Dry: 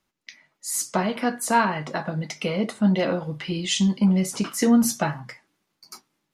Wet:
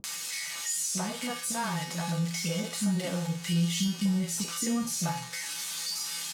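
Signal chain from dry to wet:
spike at every zero crossing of −13 dBFS
low-pass filter 8,000 Hz 12 dB per octave
tuned comb filter 170 Hz, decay 0.52 s, harmonics odd, mix 90%
upward compression, threshold −38 dBFS
multiband delay without the direct sound lows, highs 40 ms, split 370 Hz
in parallel at −0.5 dB: brickwall limiter −30 dBFS, peak gain reduction 8 dB
on the sum: low-shelf EQ 230 Hz +6.5 dB

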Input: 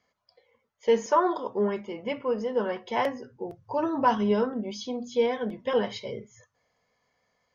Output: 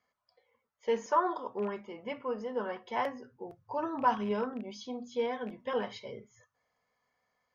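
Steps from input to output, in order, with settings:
loose part that buzzes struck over −31 dBFS, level −34 dBFS
parametric band 1,200 Hz +6 dB 1.5 octaves
tuned comb filter 250 Hz, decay 0.2 s, harmonics odd, mix 40%
level −5 dB

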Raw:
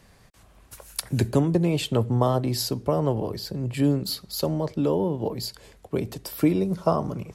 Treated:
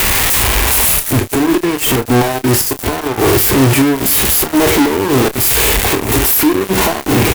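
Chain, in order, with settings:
spike at every zero crossing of −24 dBFS
gate with flip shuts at −15 dBFS, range −30 dB
phaser with its sweep stopped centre 820 Hz, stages 8
fuzz pedal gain 62 dB, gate −57 dBFS
harmonic and percussive parts rebalanced harmonic +6 dB
double-tracking delay 30 ms −12.5 dB

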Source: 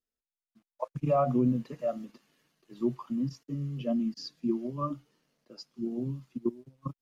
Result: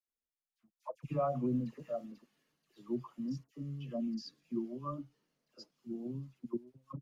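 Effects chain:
all-pass dispersion lows, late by 83 ms, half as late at 1,300 Hz
level −7.5 dB

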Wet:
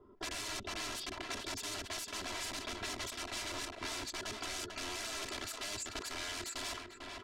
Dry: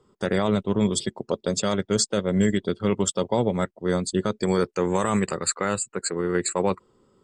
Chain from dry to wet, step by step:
Butterworth low-pass 7,100 Hz 48 dB per octave
notch filter 1,200 Hz, Q 12
wrap-around overflow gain 27 dB
high-shelf EQ 3,800 Hz +10.5 dB
comb filter 3 ms, depth 83%
on a send: repeating echo 447 ms, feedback 15%, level −13.5 dB
on the sum: downward compressor 4 to 1, threshold −35 dBFS, peak gain reduction 14 dB
low-pass that shuts in the quiet parts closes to 1,100 Hz, open at −28.5 dBFS
level that may fall only so fast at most 65 dB per second
level −1 dB

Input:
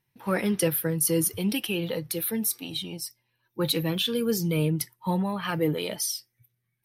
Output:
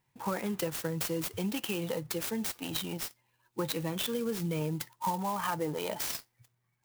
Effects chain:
parametric band 910 Hz +7 dB 1 octave, from 0:04.61 +13.5 dB
downward compressor 6 to 1, threshold −30 dBFS, peak gain reduction 15 dB
converter with an unsteady clock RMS 0.04 ms

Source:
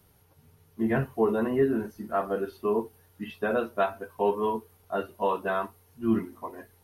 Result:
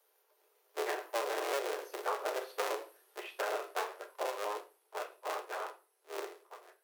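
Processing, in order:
sub-harmonics by changed cycles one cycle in 3, inverted
source passing by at 0:02.11, 14 m/s, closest 12 metres
Butterworth high-pass 370 Hz 72 dB per octave
on a send at −5 dB: convolution reverb RT60 0.30 s, pre-delay 5 ms
on the sum: downward compressor 10 to 1, threshold −31 dBFS, peak gain reduction 12 dB

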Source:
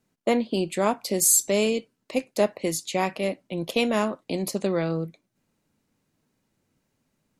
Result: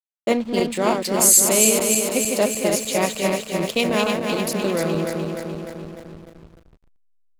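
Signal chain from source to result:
feedback delay that plays each chunk backwards 150 ms, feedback 81%, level −4 dB
high-shelf EQ 2,100 Hz +4.5 dB
hum removal 64 Hz, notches 2
slack as between gear wheels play −31.5 dBFS
level +1 dB

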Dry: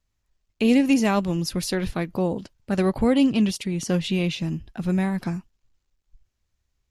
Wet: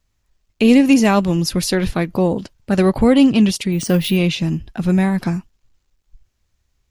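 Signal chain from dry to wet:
in parallel at −11 dB: soft clipping −16.5 dBFS, distortion −14 dB
0:03.72–0:04.17: on the sum: bad sample-rate conversion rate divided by 3×, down filtered, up hold
level +5.5 dB

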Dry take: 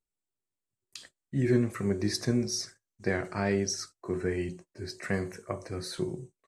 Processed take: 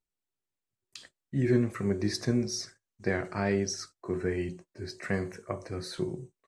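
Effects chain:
high-shelf EQ 9,300 Hz −9.5 dB

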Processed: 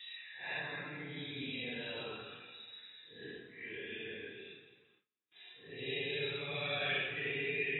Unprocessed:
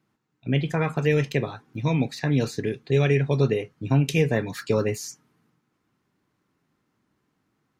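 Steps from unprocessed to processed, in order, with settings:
extreme stretch with random phases 7.8×, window 0.05 s, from 0:02.17
first difference
delay that swaps between a low-pass and a high-pass 108 ms, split 820 Hz, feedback 64%, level −10.5 dB
noise gate with hold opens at −60 dBFS
level +2.5 dB
AAC 16 kbit/s 22,050 Hz

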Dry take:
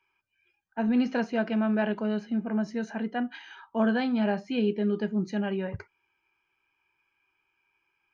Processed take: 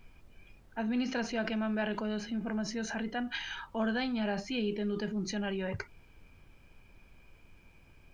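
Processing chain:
in parallel at −1 dB: compressor whose output falls as the input rises −37 dBFS, ratio −1
on the sum: high-shelf EQ 2,100 Hz +10 dB
background noise brown −47 dBFS
level −8.5 dB

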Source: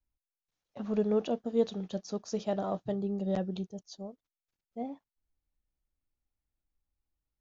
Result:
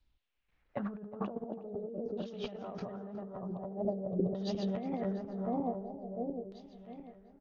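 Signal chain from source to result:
feedback delay that plays each chunk backwards 350 ms, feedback 64%, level −3 dB
compressor whose output falls as the input rises −42 dBFS, ratio −1
low-shelf EQ 320 Hz +3 dB
repeating echo 364 ms, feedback 39%, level −14.5 dB
auto-filter low-pass saw down 0.46 Hz 420–4,000 Hz

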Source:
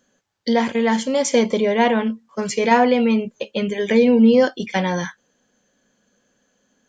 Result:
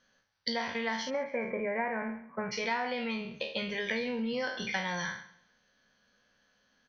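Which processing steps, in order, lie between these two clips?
peak hold with a decay on every bin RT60 0.45 s
parametric band 320 Hz −11.5 dB 2.2 octaves
downward compressor 5 to 1, threshold −29 dBFS, peak gain reduction 14 dB
Chebyshev low-pass with heavy ripple 6,000 Hz, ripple 3 dB, from 0:01.09 2,400 Hz, from 0:02.51 5,900 Hz
repeating echo 137 ms, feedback 41%, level −22 dB

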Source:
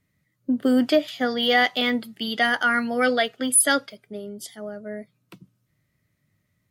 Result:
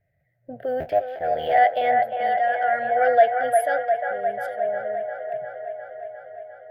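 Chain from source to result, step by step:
0:00.80–0:01.58: sub-harmonics by changed cycles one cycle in 3, muted
drawn EQ curve 130 Hz 0 dB, 250 Hz −21 dB, 710 Hz +13 dB, 1,100 Hz −26 dB, 1,600 Hz 0 dB, 3,900 Hz −21 dB, 7,800 Hz −28 dB, 14,000 Hz −12 dB
in parallel at −2.5 dB: downward compressor, threshold −30 dBFS, peak gain reduction 20.5 dB
on the sum: shaped tremolo triangle 0.71 Hz, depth 55%
transient designer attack −4 dB, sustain +2 dB
on a send: delay with a band-pass on its return 353 ms, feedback 72%, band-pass 1,100 Hz, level −3.5 dB

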